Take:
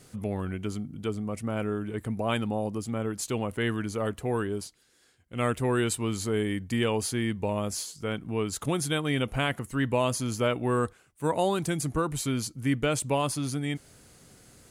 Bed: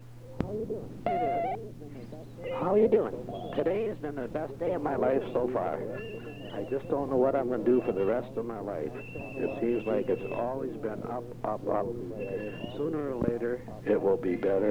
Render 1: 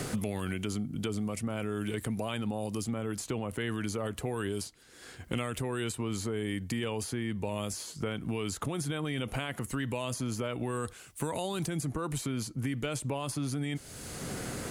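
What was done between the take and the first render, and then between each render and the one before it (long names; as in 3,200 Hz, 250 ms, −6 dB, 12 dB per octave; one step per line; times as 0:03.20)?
brickwall limiter −25.5 dBFS, peak gain reduction 11 dB
multiband upward and downward compressor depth 100%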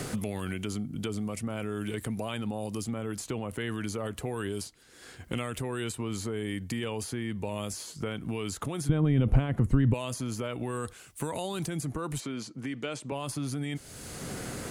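0:08.89–0:09.94: spectral tilt −4.5 dB per octave
0:12.20–0:13.12: band-pass filter 200–6,500 Hz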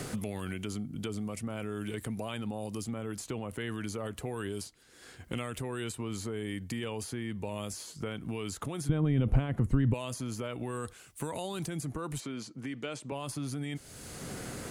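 level −3 dB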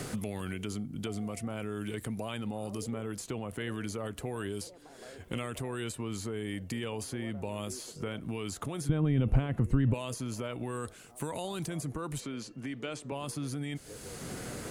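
mix in bed −24 dB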